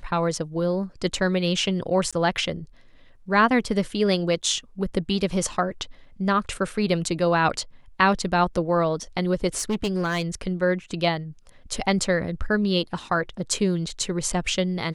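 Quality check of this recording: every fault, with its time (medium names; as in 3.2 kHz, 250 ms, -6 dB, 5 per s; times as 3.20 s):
2.11–2.13 s: dropout 16 ms
9.57–10.22 s: clipped -20 dBFS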